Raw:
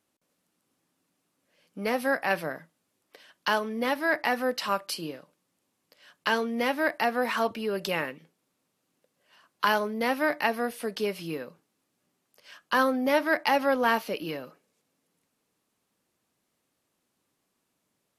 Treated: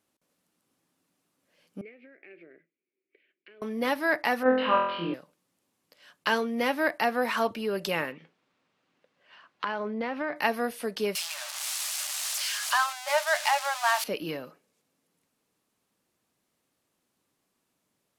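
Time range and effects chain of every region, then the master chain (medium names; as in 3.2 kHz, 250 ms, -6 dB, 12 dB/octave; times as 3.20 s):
1.81–3.62 s: compression, threshold -31 dBFS + two resonant band-passes 930 Hz, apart 2.6 oct + distance through air 360 m
4.43–5.14 s: steep low-pass 3.3 kHz 48 dB/octave + flutter echo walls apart 4 m, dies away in 0.79 s
8.12–10.36 s: low-pass 2.8 kHz + compression 5:1, threshold -26 dBFS + tape noise reduction on one side only encoder only
11.15–14.04 s: zero-crossing glitches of -16.5 dBFS + brick-wall FIR high-pass 570 Hz + distance through air 55 m
whole clip: none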